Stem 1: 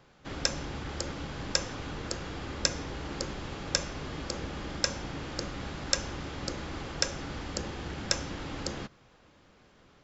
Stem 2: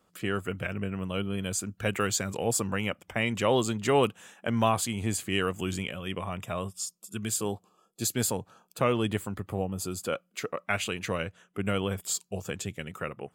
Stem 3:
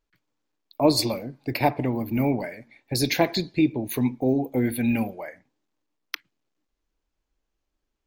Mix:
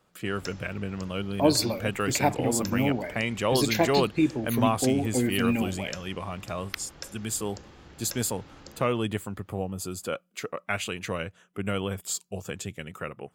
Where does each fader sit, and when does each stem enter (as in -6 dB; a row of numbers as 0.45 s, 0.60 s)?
-12.0 dB, -0.5 dB, -2.5 dB; 0.00 s, 0.00 s, 0.60 s